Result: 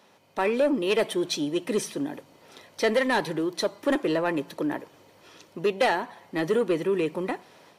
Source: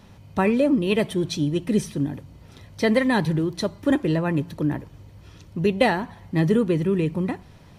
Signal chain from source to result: Chebyshev high-pass 450 Hz, order 2; AGC gain up to 6 dB; soft clip -13.5 dBFS, distortion -14 dB; gain -2.5 dB

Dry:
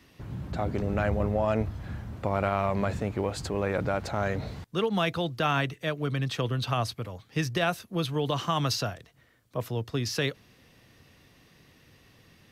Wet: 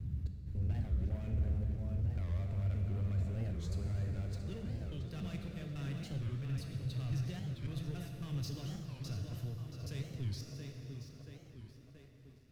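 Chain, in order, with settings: slices in reverse order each 0.274 s, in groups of 2; bell 81 Hz +6 dB 0.62 oct; notch 3200 Hz, Q 9.8; on a send: tape echo 0.679 s, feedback 66%, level -7 dB, low-pass 4100 Hz; on the sum: sample leveller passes 3; passive tone stack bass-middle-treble 10-0-1; plate-style reverb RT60 3.1 s, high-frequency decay 0.8×, DRR 2.5 dB; record warp 45 rpm, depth 250 cents; gain -6 dB

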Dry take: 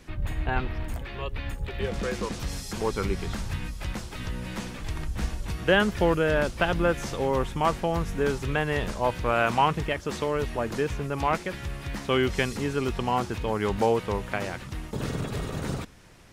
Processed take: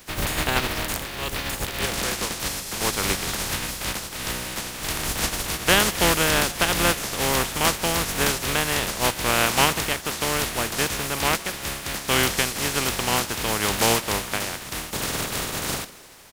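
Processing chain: spectral contrast lowered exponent 0.37; on a send: frequency-shifting echo 0.154 s, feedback 64%, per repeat +120 Hz, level -20.5 dB; on the sum: gain +3 dB

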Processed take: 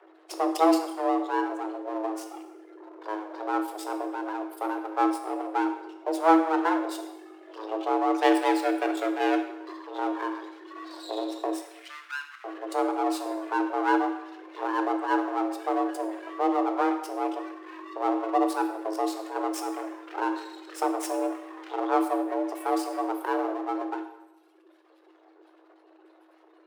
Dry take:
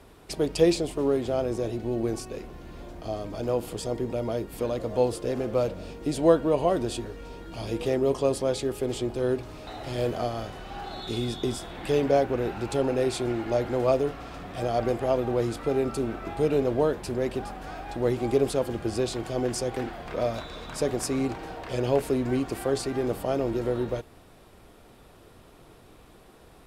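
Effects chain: 8.21–9.74 half-waves squared off; reverb removal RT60 1.8 s; in parallel at -11.5 dB: bit-crush 4-bit; on the sum: spectral gate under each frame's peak -20 dB strong; half-wave rectifier; 11.56–12.44 inverse Chebyshev high-pass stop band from 440 Hz, stop band 50 dB; frequency shift +320 Hz; reverb RT60 0.90 s, pre-delay 10 ms, DRR 5.5 dB

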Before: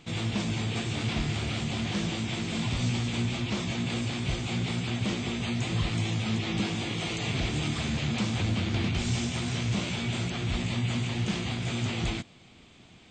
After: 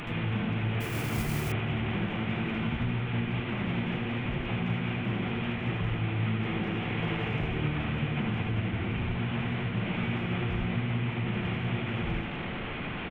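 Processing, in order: delta modulation 16 kbps, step -31.5 dBFS; compressor 6:1, threshold -30 dBFS, peak gain reduction 7 dB; speakerphone echo 0.17 s, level -10 dB; on a send at -2 dB: reverb RT60 0.25 s, pre-delay 73 ms; 0.8–1.52 on the sum: modulation noise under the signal 14 dB

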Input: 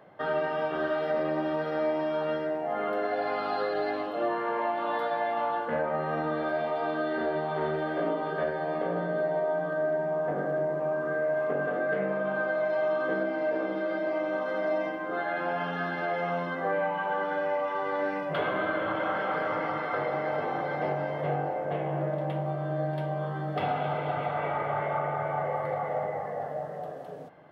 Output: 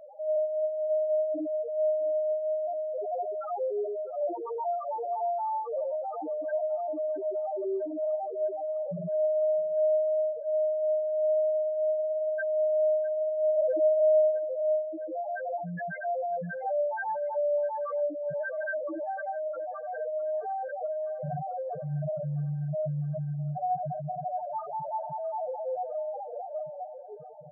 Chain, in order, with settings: delta modulation 32 kbps, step -35.5 dBFS; 13.57–14.31 bell 480 Hz +11.5 dB 0.91 oct; loudest bins only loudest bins 1; on a send: thinning echo 0.656 s, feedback 76%, high-pass 680 Hz, level -18 dB; on the sum: gain +7.5 dB

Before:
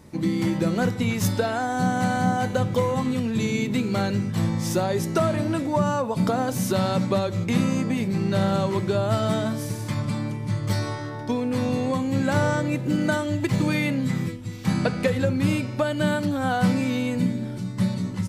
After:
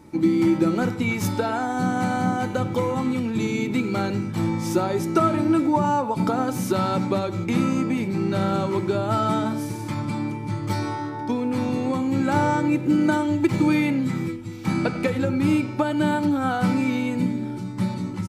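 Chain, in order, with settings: small resonant body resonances 320/870/1300/2300 Hz, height 11 dB, ringing for 35 ms; speakerphone echo 0.1 s, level -15 dB; gain -3 dB

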